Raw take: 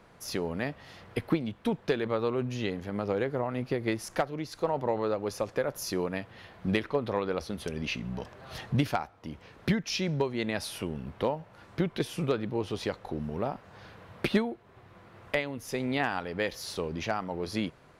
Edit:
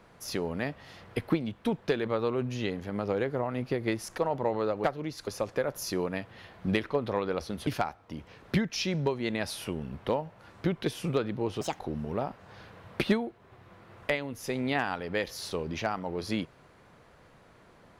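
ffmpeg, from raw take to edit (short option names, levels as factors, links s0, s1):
-filter_complex "[0:a]asplit=7[s0][s1][s2][s3][s4][s5][s6];[s0]atrim=end=4.182[s7];[s1]atrim=start=4.608:end=5.272[s8];[s2]atrim=start=4.178:end=4.612[s9];[s3]atrim=start=5.268:end=7.672[s10];[s4]atrim=start=8.808:end=12.754[s11];[s5]atrim=start=12.75:end=13.04,asetpts=PTS-STARTPTS,asetrate=69678,aresample=44100,atrim=end_sample=8094,asetpts=PTS-STARTPTS[s12];[s6]atrim=start=13.036[s13];[s7][s8]acrossfade=d=0.004:c1=hsin:c2=hsin[s14];[s14][s9]acrossfade=d=0.004:c1=hsin:c2=hsin[s15];[s15][s10]acrossfade=d=0.004:c1=hsin:c2=hsin[s16];[s16][s11]acrossfade=d=0.004:c1=hsin:c2=hsin[s17];[s17][s12]acrossfade=d=0.004:c1=hsin:c2=hsin[s18];[s18][s13]acrossfade=d=0.004:c1=hsin:c2=hsin"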